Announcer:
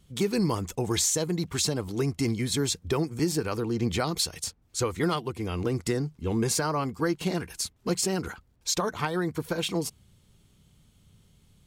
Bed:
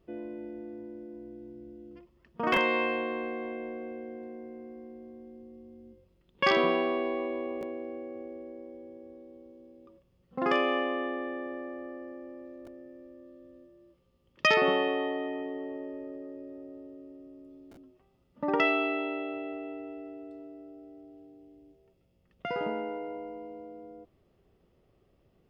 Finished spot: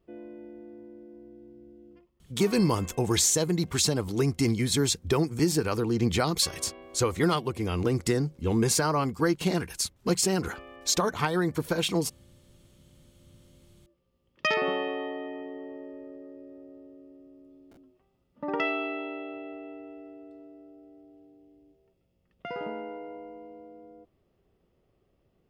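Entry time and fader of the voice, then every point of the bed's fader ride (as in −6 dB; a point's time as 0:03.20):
2.20 s, +2.0 dB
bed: 0:01.90 −4 dB
0:02.71 −20 dB
0:12.74 −20 dB
0:14.18 −3 dB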